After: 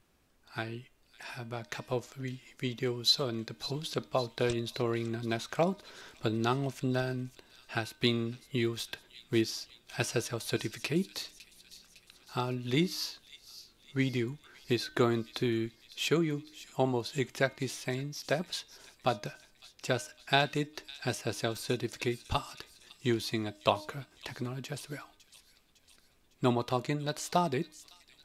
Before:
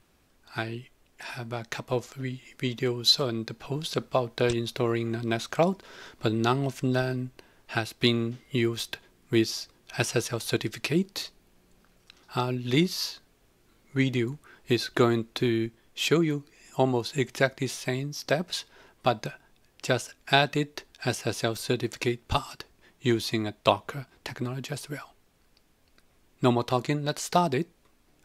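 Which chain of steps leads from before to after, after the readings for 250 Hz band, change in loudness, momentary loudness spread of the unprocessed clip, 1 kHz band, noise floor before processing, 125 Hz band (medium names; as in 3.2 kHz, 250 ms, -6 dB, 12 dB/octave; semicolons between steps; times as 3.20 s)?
-5.0 dB, -5.0 dB, 13 LU, -5.0 dB, -65 dBFS, -5.0 dB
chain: de-hum 306 Hz, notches 13; on a send: feedback echo behind a high-pass 556 ms, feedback 58%, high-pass 3.5 kHz, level -12.5 dB; on the sum: trim -5 dB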